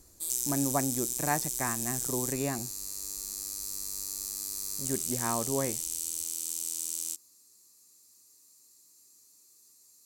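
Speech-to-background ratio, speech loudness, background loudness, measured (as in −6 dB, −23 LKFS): −1.5 dB, −34.0 LKFS, −32.5 LKFS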